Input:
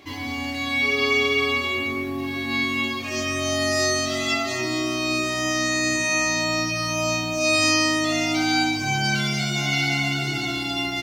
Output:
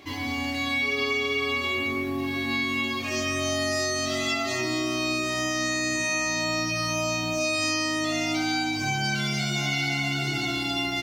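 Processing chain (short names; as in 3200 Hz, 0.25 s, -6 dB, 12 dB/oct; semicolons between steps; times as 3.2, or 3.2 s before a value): compressor, threshold -23 dBFS, peak gain reduction 7 dB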